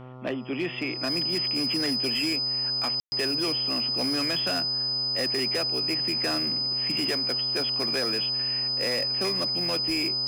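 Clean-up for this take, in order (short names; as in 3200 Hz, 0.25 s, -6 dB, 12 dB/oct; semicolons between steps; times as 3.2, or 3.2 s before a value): clip repair -22 dBFS; de-hum 127.3 Hz, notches 11; notch 5000 Hz, Q 30; room tone fill 3–3.12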